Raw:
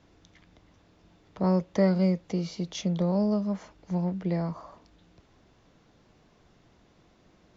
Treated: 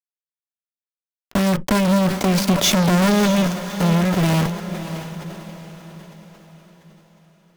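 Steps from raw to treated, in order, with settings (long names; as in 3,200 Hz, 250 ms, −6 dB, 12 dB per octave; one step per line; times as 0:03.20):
one scale factor per block 3 bits
source passing by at 0:03.01, 14 m/s, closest 4.2 metres
low shelf with overshoot 120 Hz −12.5 dB, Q 3
in parallel at +3 dB: downward compressor, threshold −33 dBFS, peak gain reduction 15 dB
on the sum: fuzz pedal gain 39 dB, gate −41 dBFS
feedback delay with all-pass diffusion 615 ms, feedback 46%, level −11 dB
on a send at −13.5 dB: convolution reverb, pre-delay 3 ms
on the sum: level that may fall only so fast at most 86 dB per second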